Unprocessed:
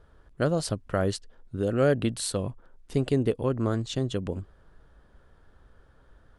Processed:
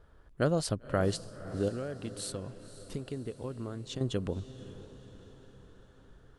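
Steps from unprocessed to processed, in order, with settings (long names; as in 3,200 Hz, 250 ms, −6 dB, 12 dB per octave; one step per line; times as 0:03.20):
0:01.68–0:04.01: downward compressor, threshold −33 dBFS, peak gain reduction 15 dB
feedback delay with all-pass diffusion 531 ms, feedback 53%, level −14.5 dB
level −2.5 dB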